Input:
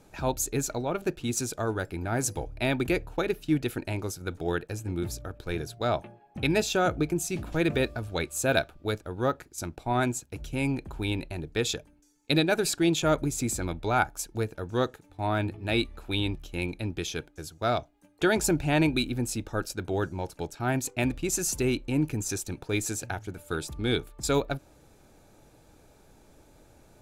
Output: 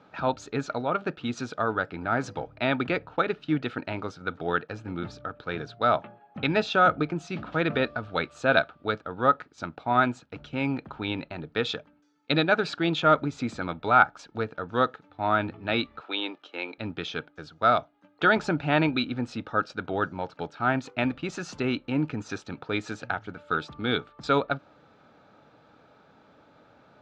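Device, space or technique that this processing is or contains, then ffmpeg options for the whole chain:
kitchen radio: -filter_complex "[0:a]asettb=1/sr,asplit=3[s0][s1][s2];[s0]atrim=end=16.004[s3];[s1]atrim=start=16:end=16.78,asetpts=PTS-STARTPTS,afade=t=in:d=0.004:c=qsin,afade=t=out:st=0.776:d=0.004:c=qsin,highpass=f=320:w=0.5412,highpass=f=320:w=1.3066[s4];[s2]atrim=start=16.776[s5];[s3][s4]acrossfade=d=0.004:c1=hsin:c2=qsin[s6];[s6][s5]acrossfade=d=0.004:c1=qsin:c2=hsin,highpass=170,equalizer=f=360:t=q:w=4:g=-8,equalizer=f=1300:t=q:w=4:g=9,equalizer=f=2400:t=q:w=4:g=-3,lowpass=f=3900:w=0.5412,lowpass=f=3900:w=1.3066,volume=1.41"

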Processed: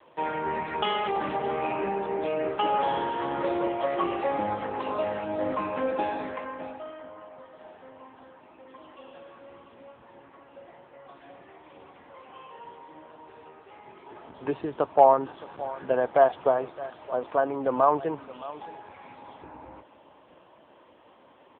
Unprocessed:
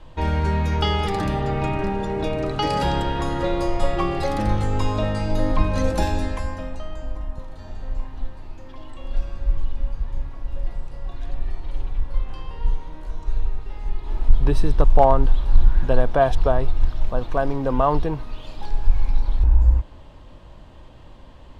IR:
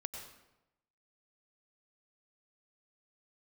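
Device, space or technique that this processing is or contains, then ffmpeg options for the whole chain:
satellite phone: -af "highpass=350,lowpass=3200,aecho=1:1:618:0.141" -ar 8000 -c:a libopencore_amrnb -b:a 6700

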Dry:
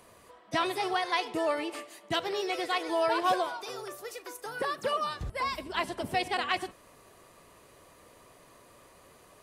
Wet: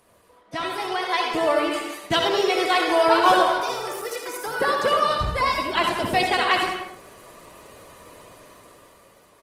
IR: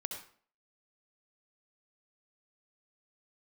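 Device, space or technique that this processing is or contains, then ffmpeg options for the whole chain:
speakerphone in a meeting room: -filter_complex "[1:a]atrim=start_sample=2205[s0];[0:a][s0]afir=irnorm=-1:irlink=0,asplit=2[s1][s2];[s2]adelay=180,highpass=300,lowpass=3400,asoftclip=type=hard:threshold=0.0668,volume=0.355[s3];[s1][s3]amix=inputs=2:normalize=0,dynaudnorm=f=220:g=11:m=3.55" -ar 48000 -c:a libopus -b:a 20k

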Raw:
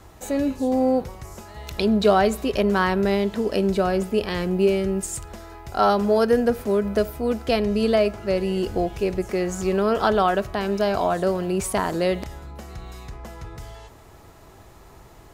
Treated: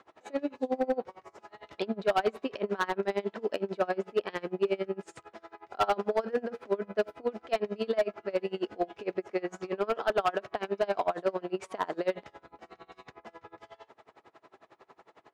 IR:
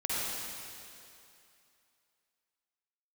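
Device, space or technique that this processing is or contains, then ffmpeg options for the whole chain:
helicopter radio: -af "highpass=360,lowpass=3000,aeval=exprs='val(0)*pow(10,-27*(0.5-0.5*cos(2*PI*11*n/s))/20)':c=same,asoftclip=type=hard:threshold=0.106"

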